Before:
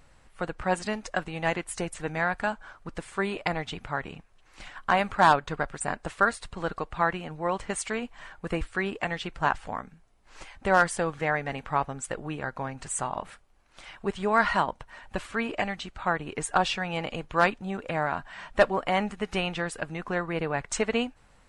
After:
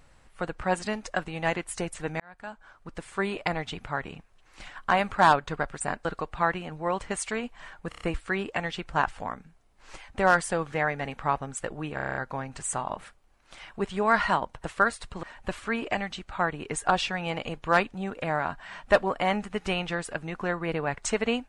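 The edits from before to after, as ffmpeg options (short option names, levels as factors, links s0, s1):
-filter_complex "[0:a]asplit=16[s0][s1][s2][s3][s4][s5][s6][s7][s8][s9][s10][s11][s12][s13][s14][s15];[s0]atrim=end=2.2,asetpts=PTS-STARTPTS,afade=t=out:st=2.196:d=0.004:c=hsin[s16];[s1]atrim=start=2.2:end=6.052,asetpts=PTS-STARTPTS,afade=t=in:d=1.01[s17];[s2]atrim=start=6.638:end=8.512[s18];[s3]atrim=start=8.478:end=8.512[s19];[s4]atrim=start=8.478:end=8.512[s20];[s5]atrim=start=8.478:end=8.512[s21];[s6]atrim=start=8.478:end=12.452[s22];[s7]atrim=start=12.418:end=12.452[s23];[s8]atrim=start=12.418:end=12.452[s24];[s9]atrim=start=12.418:end=12.452[s25];[s10]atrim=start=12.418:end=12.452[s26];[s11]atrim=start=12.418:end=12.452[s27];[s12]atrim=start=12.418:end=12.452[s28];[s13]atrim=start=12.418:end=14.902[s29];[s14]atrim=start=6.048:end=6.642[s30];[s15]atrim=start=14.898[s31];[s16][s17]concat=n=2:v=0:a=1[s32];[s32][s18]acrossfade=d=0.004:c1=hsin:c2=hsin[s33];[s33][s19]acrossfade=d=0.004:c1=hsin:c2=hsin[s34];[s34][s20]acrossfade=d=0.004:c1=hsin:c2=hsin[s35];[s35][s21]acrossfade=d=0.004:c1=hsin:c2=hsin[s36];[s36][s22]acrossfade=d=0.004:c1=hsin:c2=hsin[s37];[s37][s23]acrossfade=d=0.004:c1=hsin:c2=hsin[s38];[s38][s24]acrossfade=d=0.004:c1=hsin:c2=hsin[s39];[s39][s25]acrossfade=d=0.004:c1=hsin:c2=hsin[s40];[s40][s26]acrossfade=d=0.004:c1=hsin:c2=hsin[s41];[s41][s27]acrossfade=d=0.004:c1=hsin:c2=hsin[s42];[s42][s28]acrossfade=d=0.004:c1=hsin:c2=hsin[s43];[s43][s29]acrossfade=d=0.004:c1=hsin:c2=hsin[s44];[s44][s30]acrossfade=d=0.004:c1=hsin:c2=hsin[s45];[s45][s31]acrossfade=d=0.004:c1=hsin:c2=hsin"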